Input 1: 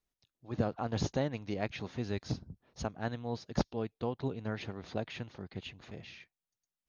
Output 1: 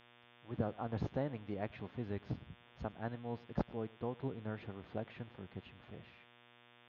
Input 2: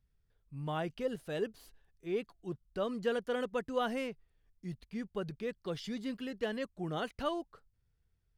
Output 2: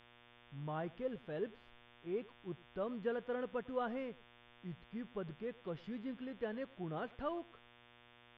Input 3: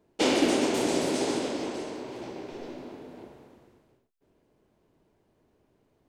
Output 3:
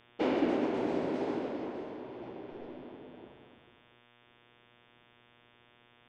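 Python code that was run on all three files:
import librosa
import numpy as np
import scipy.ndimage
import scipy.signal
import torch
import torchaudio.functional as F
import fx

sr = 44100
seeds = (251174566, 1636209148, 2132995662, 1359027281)

y = scipy.signal.sosfilt(scipy.signal.butter(2, 1800.0, 'lowpass', fs=sr, output='sos'), x)
y = fx.dmg_buzz(y, sr, base_hz=120.0, harmonics=30, level_db=-59.0, tilt_db=-1, odd_only=False)
y = y + 10.0 ** (-22.5 / 20.0) * np.pad(y, (int(104 * sr / 1000.0), 0))[:len(y)]
y = F.gain(torch.from_numpy(y), -5.0).numpy()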